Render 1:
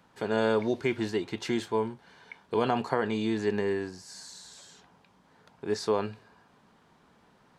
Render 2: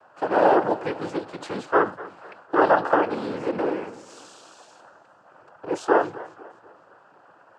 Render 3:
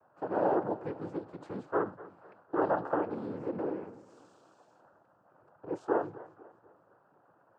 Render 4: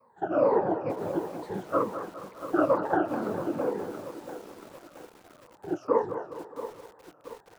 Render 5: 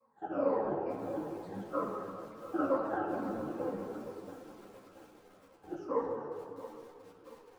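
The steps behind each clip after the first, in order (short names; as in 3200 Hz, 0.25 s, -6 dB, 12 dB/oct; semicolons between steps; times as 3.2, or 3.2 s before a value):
band shelf 770 Hz +16 dB; noise vocoder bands 8; warbling echo 0.248 s, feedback 42%, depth 128 cents, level -18.5 dB; gain -3.5 dB
EQ curve 120 Hz 0 dB, 1300 Hz -10 dB, 2800 Hz -19 dB; gain -4 dB
moving spectral ripple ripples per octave 0.94, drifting -2.2 Hz, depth 22 dB; on a send: thinning echo 0.205 s, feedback 50%, high-pass 170 Hz, level -10.5 dB; on the sum: lo-fi delay 0.679 s, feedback 55%, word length 7-bit, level -12.5 dB
reverb RT60 1.8 s, pre-delay 4 ms, DRR 0 dB; ensemble effect; gain -8 dB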